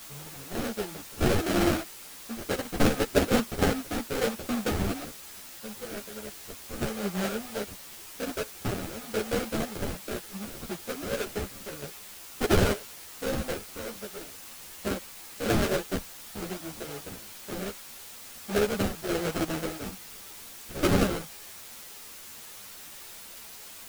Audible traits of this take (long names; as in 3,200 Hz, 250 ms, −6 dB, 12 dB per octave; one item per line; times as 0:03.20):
aliases and images of a low sample rate 1,000 Hz, jitter 20%
sample-and-hold tremolo 1.1 Hz, depth 85%
a quantiser's noise floor 8 bits, dither triangular
a shimmering, thickened sound